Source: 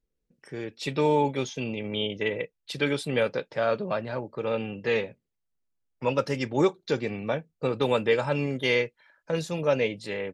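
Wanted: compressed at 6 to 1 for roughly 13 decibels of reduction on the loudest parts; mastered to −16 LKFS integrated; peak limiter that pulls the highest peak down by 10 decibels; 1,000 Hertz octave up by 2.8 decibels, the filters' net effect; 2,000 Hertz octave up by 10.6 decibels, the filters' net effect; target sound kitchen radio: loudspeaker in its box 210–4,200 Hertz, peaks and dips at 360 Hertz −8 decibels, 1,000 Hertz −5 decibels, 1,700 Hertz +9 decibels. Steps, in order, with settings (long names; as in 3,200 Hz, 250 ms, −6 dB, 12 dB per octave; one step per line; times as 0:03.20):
parametric band 1,000 Hz +3.5 dB
parametric band 2,000 Hz +7.5 dB
downward compressor 6 to 1, threshold −30 dBFS
brickwall limiter −25 dBFS
loudspeaker in its box 210–4,200 Hz, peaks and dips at 360 Hz −8 dB, 1,000 Hz −5 dB, 1,700 Hz +9 dB
level +20.5 dB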